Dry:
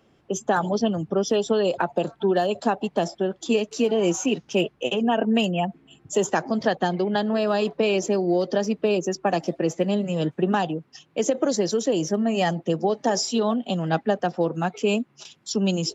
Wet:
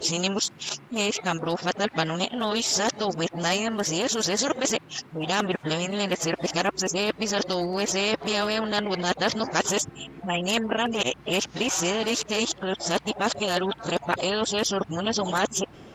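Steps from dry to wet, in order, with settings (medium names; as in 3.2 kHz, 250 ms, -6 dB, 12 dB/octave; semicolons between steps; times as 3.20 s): reverse the whole clip; spectrum-flattening compressor 2:1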